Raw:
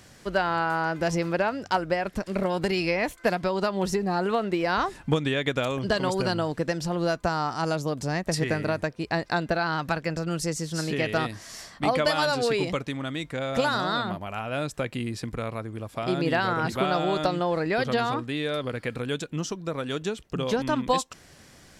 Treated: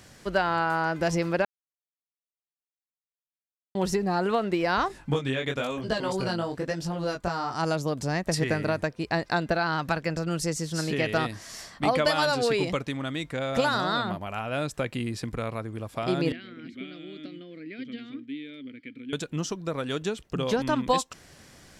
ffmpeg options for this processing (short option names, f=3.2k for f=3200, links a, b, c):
-filter_complex "[0:a]asettb=1/sr,asplit=3[a][b][c];[a]atrim=end=4.884[d];[b]atrim=start=4.88:end=7.54,asetpts=PTS-STARTPTS,afade=t=in:d=0.004:c=qsin,afade=t=out:st=2.656:d=0.004:c=qsin,flanger=delay=18:depth=5.2:speed=1[e];[c]atrim=start=7.536[f];[d][e]acrossfade=d=0.004:c1=hsin:c2=qsin[g];[g][f]acrossfade=d=0.004:c1=qsin:c2=hsin,asettb=1/sr,asplit=3[h][i][j];[h]atrim=end=16.324[k];[i]atrim=start=16.32:end=19.13,asetpts=PTS-STARTPTS,afade=t=in:d=0.004:c=qsin,afade=t=out:st=2.806:d=0.004:c=qsin,asplit=3[l][m][n];[l]bandpass=f=270:t=q:w=8,volume=0dB[o];[m]bandpass=f=2.29k:t=q:w=8,volume=-6dB[p];[n]bandpass=f=3.01k:t=q:w=8,volume=-9dB[q];[o][p][q]amix=inputs=3:normalize=0[r];[j]atrim=start=19.126[s];[k][r]acrossfade=d=0.004:c1=hsin:c2=qsin[t];[t][s]acrossfade=d=0.004:c1=qsin:c2=hsin,asplit=3[u][v][w];[u]atrim=end=1.45,asetpts=PTS-STARTPTS,afade=t=out:st=1.446:d=0.004:c=hsin[x];[v]atrim=start=1.45:end=3.75,asetpts=PTS-STARTPTS,volume=0[y];[w]atrim=start=3.75,asetpts=PTS-STARTPTS,afade=t=in:d=0.004:c=hsin[z];[x][y][z]concat=n=3:v=0:a=1"